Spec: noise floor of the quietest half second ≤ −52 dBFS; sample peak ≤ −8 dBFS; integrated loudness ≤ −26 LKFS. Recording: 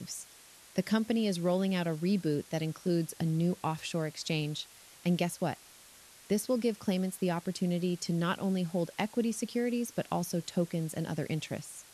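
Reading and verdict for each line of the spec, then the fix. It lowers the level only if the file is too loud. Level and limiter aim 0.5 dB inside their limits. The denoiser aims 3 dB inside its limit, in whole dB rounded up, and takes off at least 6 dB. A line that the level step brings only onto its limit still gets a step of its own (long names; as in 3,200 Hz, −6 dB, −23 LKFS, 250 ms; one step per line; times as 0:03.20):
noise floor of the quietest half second −56 dBFS: in spec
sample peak −16.0 dBFS: in spec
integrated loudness −32.5 LKFS: in spec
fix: no processing needed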